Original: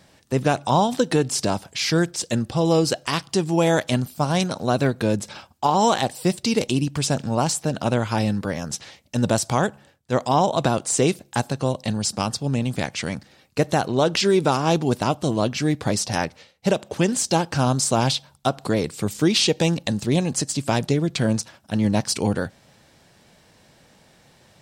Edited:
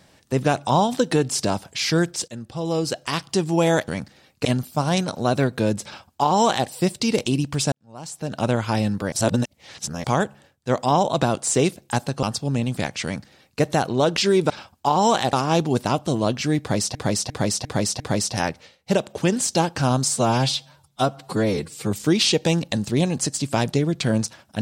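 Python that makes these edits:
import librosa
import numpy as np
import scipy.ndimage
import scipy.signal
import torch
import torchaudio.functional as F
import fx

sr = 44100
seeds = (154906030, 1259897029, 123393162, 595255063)

y = fx.edit(x, sr, fx.fade_in_from(start_s=2.28, length_s=1.03, floor_db=-15.0),
    fx.duplicate(start_s=5.28, length_s=0.83, to_s=14.49),
    fx.fade_in_span(start_s=7.15, length_s=0.71, curve='qua'),
    fx.reverse_span(start_s=8.55, length_s=0.92),
    fx.cut(start_s=11.66, length_s=0.56),
    fx.duplicate(start_s=13.03, length_s=0.57, to_s=3.88),
    fx.repeat(start_s=15.76, length_s=0.35, count=5),
    fx.stretch_span(start_s=17.84, length_s=1.22, factor=1.5), tone=tone)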